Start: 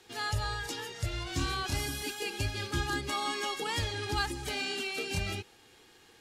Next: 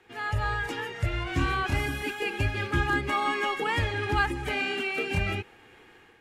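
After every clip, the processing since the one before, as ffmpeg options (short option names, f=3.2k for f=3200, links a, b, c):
-af "dynaudnorm=f=230:g=3:m=6dB,highshelf=f=3.2k:t=q:w=1.5:g=-11.5"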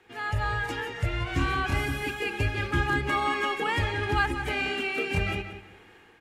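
-filter_complex "[0:a]asplit=2[a][b];[b]adelay=180,lowpass=f=4.8k:p=1,volume=-10dB,asplit=2[c][d];[d]adelay=180,lowpass=f=4.8k:p=1,volume=0.26,asplit=2[e][f];[f]adelay=180,lowpass=f=4.8k:p=1,volume=0.26[g];[a][c][e][g]amix=inputs=4:normalize=0"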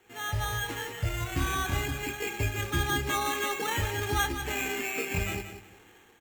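-filter_complex "[0:a]acrusher=samples=9:mix=1:aa=0.000001,asplit=2[a][b];[b]adelay=27,volume=-12dB[c];[a][c]amix=inputs=2:normalize=0,volume=-3dB"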